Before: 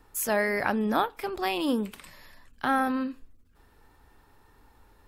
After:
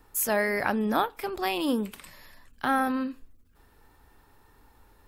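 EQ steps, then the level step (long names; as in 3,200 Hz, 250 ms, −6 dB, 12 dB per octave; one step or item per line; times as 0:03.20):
high-shelf EQ 12,000 Hz +7 dB
0.0 dB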